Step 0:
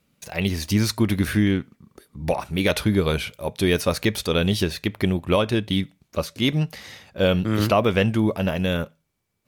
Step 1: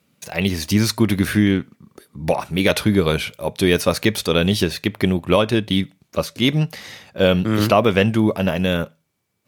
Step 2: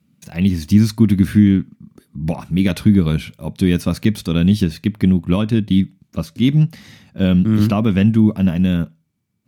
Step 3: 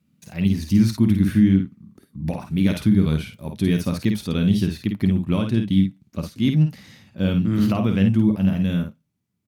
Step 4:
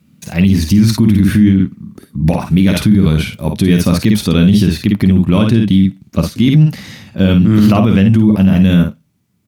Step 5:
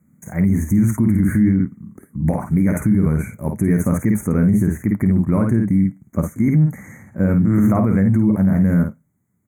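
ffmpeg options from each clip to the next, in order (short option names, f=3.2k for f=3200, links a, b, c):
-af "highpass=95,volume=4dB"
-af "lowshelf=f=330:t=q:w=1.5:g=11,volume=-7dB"
-af "aecho=1:1:52|62:0.501|0.168,volume=-5.5dB"
-af "alimiter=level_in=15.5dB:limit=-1dB:release=50:level=0:latency=1,volume=-1dB"
-af "asuperstop=centerf=3800:order=20:qfactor=0.92,volume=-6dB"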